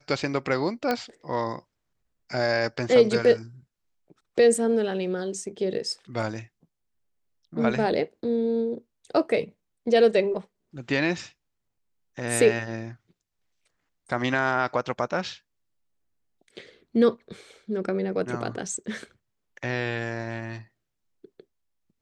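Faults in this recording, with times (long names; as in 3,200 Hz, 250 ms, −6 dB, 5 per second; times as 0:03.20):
0:00.91: click −12 dBFS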